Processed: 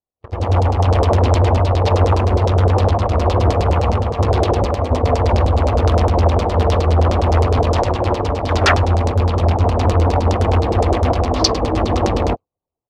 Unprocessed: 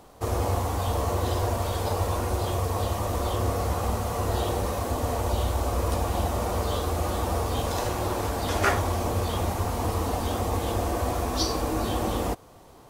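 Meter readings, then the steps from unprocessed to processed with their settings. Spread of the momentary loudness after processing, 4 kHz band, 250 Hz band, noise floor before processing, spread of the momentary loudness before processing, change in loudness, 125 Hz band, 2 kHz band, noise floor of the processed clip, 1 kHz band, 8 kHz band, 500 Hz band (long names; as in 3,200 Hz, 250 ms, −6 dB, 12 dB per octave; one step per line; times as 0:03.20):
4 LU, +8.5 dB, +10.0 dB, −50 dBFS, 2 LU, +11.5 dB, +13.5 dB, +9.0 dB, −82 dBFS, +9.5 dB, +2.0 dB, +11.0 dB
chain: adaptive Wiener filter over 25 samples
parametric band 90 Hz +5.5 dB 0.7 octaves
automatic gain control gain up to 7.5 dB
double-tracking delay 24 ms −10.5 dB
downward expander −15 dBFS
high-shelf EQ 2,300 Hz +10 dB
leveller curve on the samples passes 3
notch filter 1,500 Hz, Q 16
auto-filter low-pass saw down 9.7 Hz 440–6,000 Hz
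highs frequency-modulated by the lows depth 0.37 ms
level −6.5 dB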